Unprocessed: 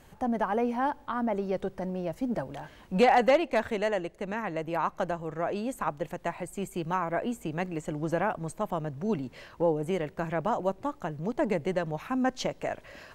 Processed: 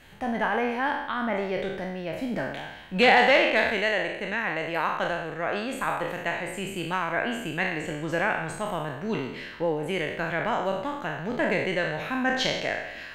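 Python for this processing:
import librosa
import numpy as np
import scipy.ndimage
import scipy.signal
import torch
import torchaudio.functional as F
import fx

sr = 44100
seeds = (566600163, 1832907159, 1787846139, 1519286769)

y = fx.spec_trails(x, sr, decay_s=0.88)
y = fx.band_shelf(y, sr, hz=2500.0, db=9.5, octaves=1.7)
y = y * 10.0 ** (-1.5 / 20.0)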